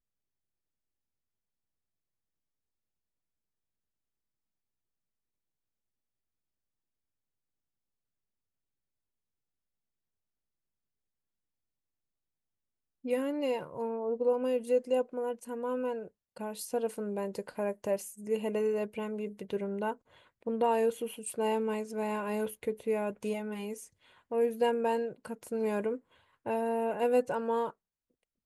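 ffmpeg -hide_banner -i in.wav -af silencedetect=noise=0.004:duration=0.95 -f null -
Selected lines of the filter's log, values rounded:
silence_start: 0.00
silence_end: 13.04 | silence_duration: 13.04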